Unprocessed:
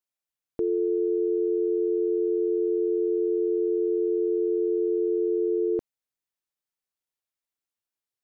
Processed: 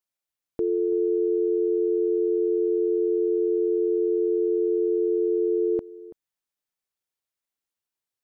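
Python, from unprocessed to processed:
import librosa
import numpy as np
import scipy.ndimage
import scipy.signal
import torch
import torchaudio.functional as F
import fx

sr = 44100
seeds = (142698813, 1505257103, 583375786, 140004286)

y = x + 10.0 ** (-18.0 / 20.0) * np.pad(x, (int(332 * sr / 1000.0), 0))[:len(x)]
y = y * librosa.db_to_amplitude(1.0)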